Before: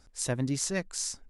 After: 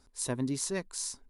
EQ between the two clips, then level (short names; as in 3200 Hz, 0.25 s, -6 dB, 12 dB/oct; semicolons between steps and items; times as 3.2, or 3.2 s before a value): thirty-one-band EQ 250 Hz +6 dB, 400 Hz +7 dB, 1000 Hz +9 dB, 4000 Hz +5 dB, 10000 Hz +9 dB; -5.5 dB